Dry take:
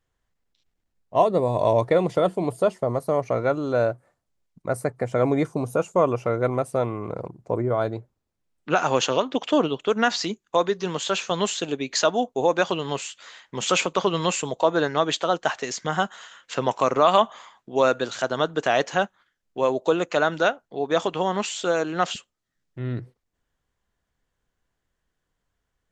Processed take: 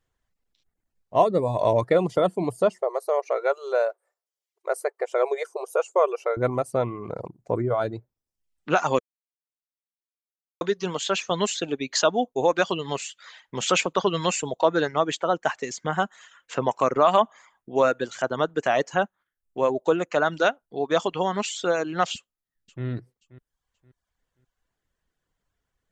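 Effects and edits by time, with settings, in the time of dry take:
2.82–6.37 brick-wall FIR high-pass 360 Hz
8.99–10.61 mute
14.91–20.26 bell 4200 Hz -7 dB 1.2 oct
22.15–22.85 echo throw 0.53 s, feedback 30%, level -17 dB
whole clip: reverb removal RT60 0.65 s

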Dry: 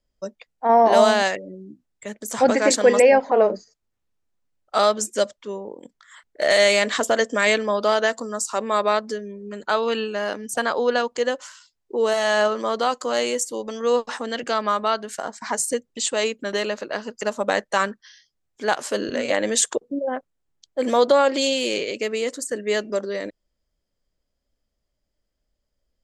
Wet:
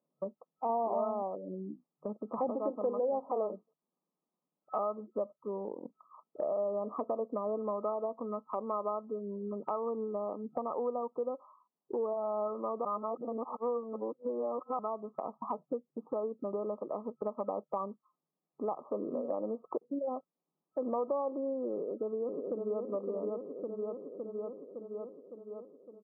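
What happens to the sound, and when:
12.85–14.79 reverse
21.72–22.82 echo throw 0.56 s, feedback 60%, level -4 dB
whole clip: FFT band-pass 140–1300 Hz; compressor 3:1, threshold -36 dBFS

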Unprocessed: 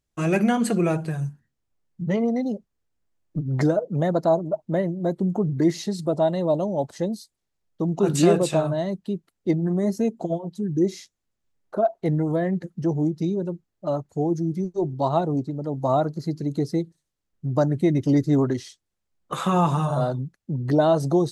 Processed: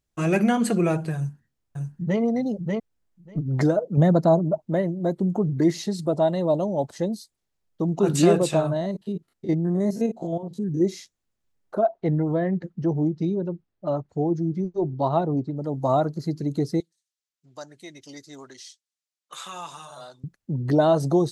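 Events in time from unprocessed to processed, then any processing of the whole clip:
1.16–2.2 echo throw 0.59 s, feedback 10%, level -3 dB
3.97–4.58 bell 160 Hz +8 dB 1.6 oct
8.76–10.81 stepped spectrum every 50 ms
11.85–15.57 air absorption 140 m
16.8–20.24 band-pass 5800 Hz, Q 0.78

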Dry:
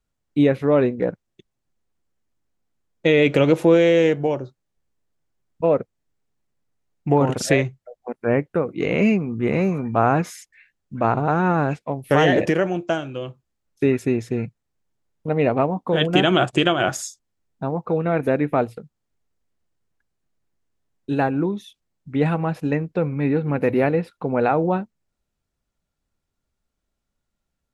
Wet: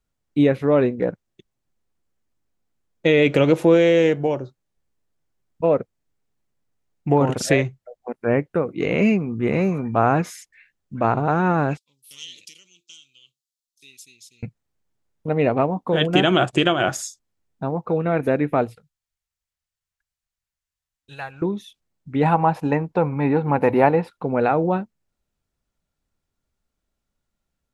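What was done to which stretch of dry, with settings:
11.77–14.43 inverse Chebyshev high-pass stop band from 1800 Hz
18.75–21.42 passive tone stack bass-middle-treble 10-0-10
22.23–24.1 bell 890 Hz +14.5 dB 0.64 oct

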